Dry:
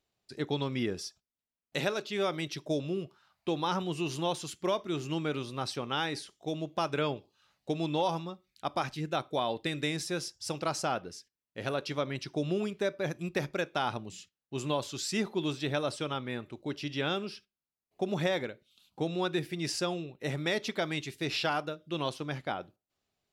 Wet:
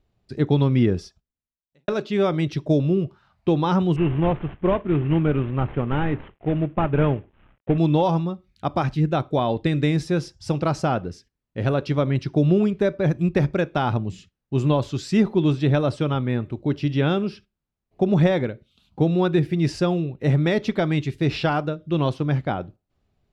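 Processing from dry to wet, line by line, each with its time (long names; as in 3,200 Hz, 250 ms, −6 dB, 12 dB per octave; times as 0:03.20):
0:00.96–0:01.88: fade out quadratic
0:03.96–0:07.78: variable-slope delta modulation 16 kbit/s
whole clip: RIAA equalisation playback; level +7 dB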